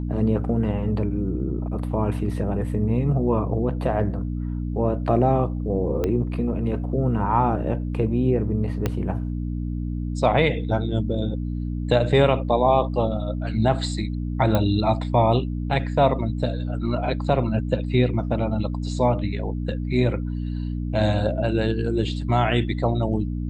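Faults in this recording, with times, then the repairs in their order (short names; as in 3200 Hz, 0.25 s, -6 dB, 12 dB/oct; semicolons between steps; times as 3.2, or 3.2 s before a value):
hum 60 Hz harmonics 5 -27 dBFS
6.04 pop -12 dBFS
8.86 pop -10 dBFS
14.55 pop -9 dBFS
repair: de-click; de-hum 60 Hz, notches 5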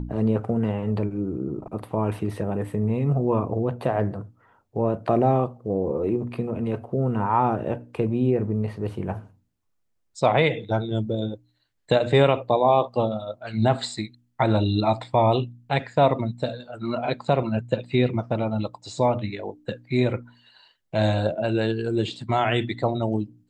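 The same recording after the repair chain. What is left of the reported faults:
6.04 pop
8.86 pop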